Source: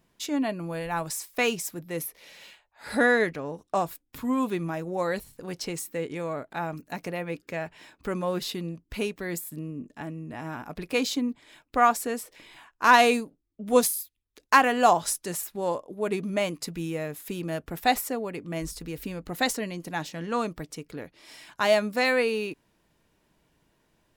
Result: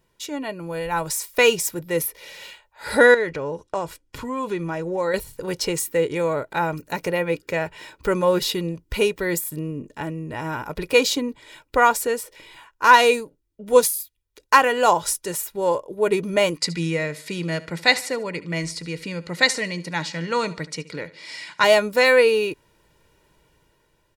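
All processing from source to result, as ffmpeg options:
ffmpeg -i in.wav -filter_complex "[0:a]asettb=1/sr,asplit=3[link_01][link_02][link_03];[link_01]atrim=end=3.144[link_04];[link_02]atrim=start=3.14:end=5.14,asetpts=PTS-STARTPTS,afade=type=in:duration=0.004:curve=qsin,afade=type=out:start_time=1.996:duration=0.004:curve=qsin,bandreject=frequency=3700:width=19,acompressor=threshold=-32dB:ratio=2.5:attack=3.2:release=140:knee=1:detection=peak,lowpass=8000[link_05];[link_03]atrim=start=5.136[link_06];[link_04][link_05]acrossfade=duration=0.004:curve1=hsin:curve2=qsin[link_07];[link_07][link_06]acrossfade=duration=0.004:curve1=qsin:curve2=hsin,asettb=1/sr,asplit=3[link_08][link_09][link_10];[link_08]atrim=end=16.574[link_11];[link_09]atrim=start=16.57:end=21.64,asetpts=PTS-STARTPTS,afade=type=in:duration=0.004:curve=qsin,afade=type=out:start_time=5.066:duration=0.004:curve=qsin,highpass=150,equalizer=frequency=170:width_type=q:width=4:gain=7,equalizer=frequency=410:width_type=q:width=4:gain=-6,equalizer=frequency=770:width_type=q:width=4:gain=-4,equalizer=frequency=2100:width_type=q:width=4:gain=9,equalizer=frequency=4500:width_type=q:width=4:gain=9,lowpass=frequency=9200:width=0.5412,lowpass=frequency=9200:width=1.3066,aecho=1:1:73|146|219:0.126|0.0504|0.0201,atrim=end_sample=223587[link_12];[link_10]atrim=start=21.636[link_13];[link_11][link_12]acrossfade=duration=0.004:curve1=hsin:curve2=qsin[link_14];[link_14][link_13]acrossfade=duration=0.004:curve1=qsin:curve2=hsin,aecho=1:1:2.1:0.54,dynaudnorm=framelen=280:gausssize=7:maxgain=8dB" out.wav

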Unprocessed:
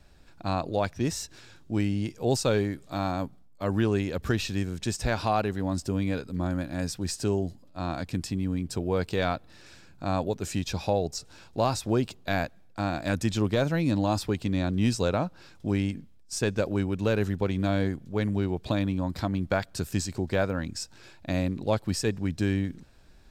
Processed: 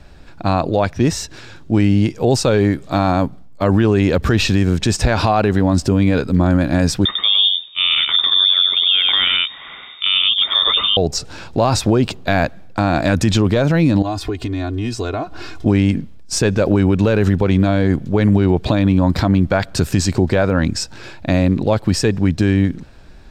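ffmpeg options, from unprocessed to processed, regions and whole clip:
ffmpeg -i in.wav -filter_complex "[0:a]asettb=1/sr,asplit=3[link_01][link_02][link_03];[link_01]atrim=end=7.054[link_04];[link_02]atrim=start=7.05:end=10.97,asetpts=PTS-STARTPTS,afade=type=in:duration=0.004:curve=qsin,afade=type=out:start_time=3.916:duration=0.004:curve=qsin,lowpass=frequency=3100:width_type=q:width=0.5098,lowpass=frequency=3100:width_type=q:width=0.6013,lowpass=frequency=3100:width_type=q:width=0.9,lowpass=frequency=3100:width_type=q:width=2.563,afreqshift=-3700,aecho=1:1:98:0.596,atrim=end_sample=172872[link_05];[link_03]atrim=start=10.966[link_06];[link_04][link_05]acrossfade=duration=0.004:curve1=hsin:curve2=qsin[link_07];[link_07][link_06]acrossfade=duration=0.004:curve1=qsin:curve2=hsin,asettb=1/sr,asplit=3[link_08][link_09][link_10];[link_08]atrim=end=14.024[link_11];[link_09]atrim=start=14.02:end=15.66,asetpts=PTS-STARTPTS,afade=type=in:duration=0.004:curve=qsin,afade=type=out:start_time=1.636:duration=0.004:curve=qsin,aecho=1:1:2.8:0.93,atrim=end_sample=72324,acompressor=threshold=-40dB:ratio=4:attack=3.2:release=140:knee=1:detection=peak[link_12];[link_10]atrim=start=15.656[link_13];[link_11][link_12]acrossfade=duration=0.004:curve1=hsin:curve2=qsin[link_14];[link_14][link_13]acrossfade=duration=0.004:curve1=qsin:curve2=hsin,lowpass=frequency=3700:poles=1,dynaudnorm=framelen=1000:gausssize=7:maxgain=4dB,alimiter=level_in=19dB:limit=-1dB:release=50:level=0:latency=1,volume=-4.5dB" out.wav

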